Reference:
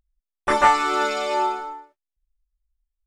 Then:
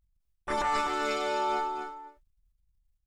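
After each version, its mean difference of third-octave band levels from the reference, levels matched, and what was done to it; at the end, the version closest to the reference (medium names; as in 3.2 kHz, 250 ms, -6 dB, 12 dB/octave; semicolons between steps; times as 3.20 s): 5.5 dB: transient shaper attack -8 dB, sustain +11 dB; bass shelf 120 Hz +8 dB; compression 5:1, threshold -19 dBFS, peak gain reduction 8 dB; on a send: delay 252 ms -6.5 dB; on the sum: trim -7 dB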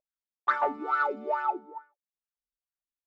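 10.5 dB: wah-wah 2.3 Hz 210–1600 Hz, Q 8; treble shelf 7.2 kHz -7.5 dB; saturation -17.5 dBFS, distortion -24 dB; trim +5 dB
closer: first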